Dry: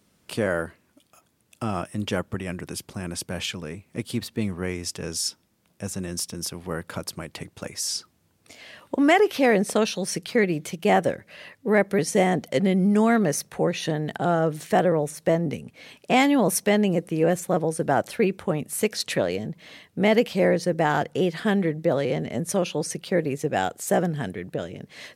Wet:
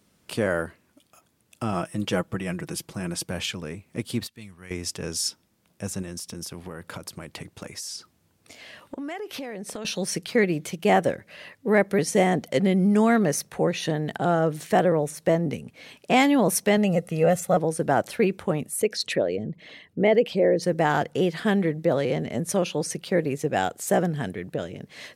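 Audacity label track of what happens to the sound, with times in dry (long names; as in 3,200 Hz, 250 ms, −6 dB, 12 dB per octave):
1.720000	3.310000	comb filter 6.1 ms, depth 51%
4.270000	4.710000	guitar amp tone stack bass-middle-treble 5-5-5
6.020000	9.850000	downward compressor 10 to 1, threshold −31 dBFS
16.770000	17.570000	comb filter 1.5 ms, depth 64%
18.690000	20.620000	spectral envelope exaggerated exponent 1.5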